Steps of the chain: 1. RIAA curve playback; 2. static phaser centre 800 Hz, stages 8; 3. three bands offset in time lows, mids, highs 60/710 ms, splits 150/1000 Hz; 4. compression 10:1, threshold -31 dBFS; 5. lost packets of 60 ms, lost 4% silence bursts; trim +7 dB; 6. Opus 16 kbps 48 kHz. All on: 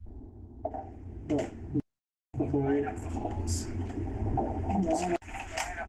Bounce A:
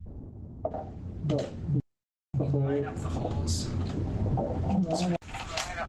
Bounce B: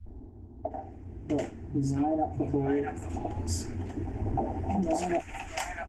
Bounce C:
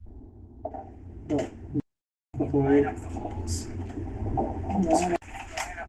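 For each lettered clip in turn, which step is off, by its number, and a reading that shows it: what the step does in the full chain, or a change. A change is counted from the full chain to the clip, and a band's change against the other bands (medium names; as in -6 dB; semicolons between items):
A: 2, 4 kHz band +6.5 dB; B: 5, momentary loudness spread change -1 LU; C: 4, crest factor change +2.5 dB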